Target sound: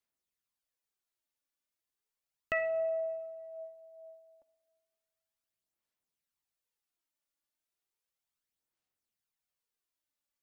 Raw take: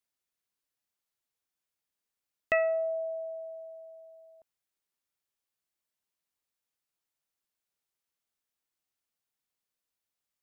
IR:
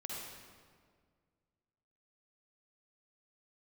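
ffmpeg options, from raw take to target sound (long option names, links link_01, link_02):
-filter_complex "[0:a]aphaser=in_gain=1:out_gain=1:delay=3.5:decay=0.47:speed=0.34:type=sinusoidal,asplit=2[link_01][link_02];[1:a]atrim=start_sample=2205,asetrate=48510,aresample=44100[link_03];[link_02][link_03]afir=irnorm=-1:irlink=0,volume=-11dB[link_04];[link_01][link_04]amix=inputs=2:normalize=0,volume=-5.5dB"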